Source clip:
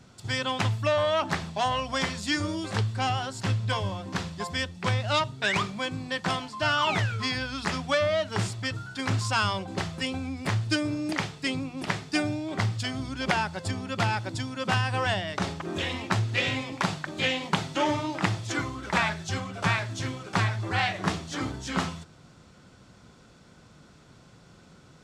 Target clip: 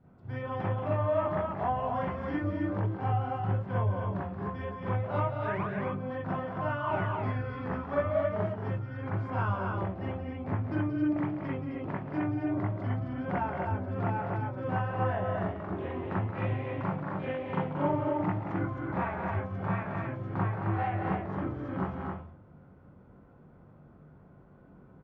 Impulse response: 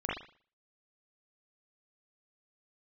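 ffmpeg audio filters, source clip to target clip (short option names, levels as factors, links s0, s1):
-filter_complex "[0:a]lowpass=1000,aecho=1:1:177.8|218.7|265.3:0.398|0.251|0.631[s0];[1:a]atrim=start_sample=2205,atrim=end_sample=3087[s1];[s0][s1]afir=irnorm=-1:irlink=0,volume=0.376"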